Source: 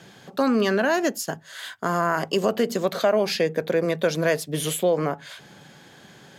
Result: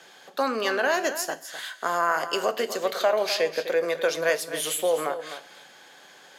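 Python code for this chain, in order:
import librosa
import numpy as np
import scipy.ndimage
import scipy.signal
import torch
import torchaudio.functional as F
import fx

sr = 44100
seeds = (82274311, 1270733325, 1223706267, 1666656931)

p1 = scipy.signal.sosfilt(scipy.signal.butter(2, 530.0, 'highpass', fs=sr, output='sos'), x)
p2 = p1 + fx.echo_single(p1, sr, ms=254, db=-11.5, dry=0)
y = fx.rev_double_slope(p2, sr, seeds[0], early_s=0.31, late_s=1.5, knee_db=-18, drr_db=10.5)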